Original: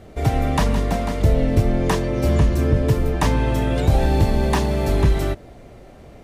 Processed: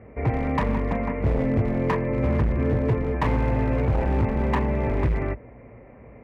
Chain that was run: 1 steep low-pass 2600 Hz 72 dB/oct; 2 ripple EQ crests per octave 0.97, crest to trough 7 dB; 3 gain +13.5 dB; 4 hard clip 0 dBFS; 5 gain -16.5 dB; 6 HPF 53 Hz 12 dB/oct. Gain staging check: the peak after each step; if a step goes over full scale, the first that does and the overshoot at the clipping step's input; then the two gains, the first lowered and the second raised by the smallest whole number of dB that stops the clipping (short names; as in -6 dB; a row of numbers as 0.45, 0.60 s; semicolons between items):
-7.0, -4.5, +9.0, 0.0, -16.5, -11.0 dBFS; step 3, 9.0 dB; step 3 +4.5 dB, step 5 -7.5 dB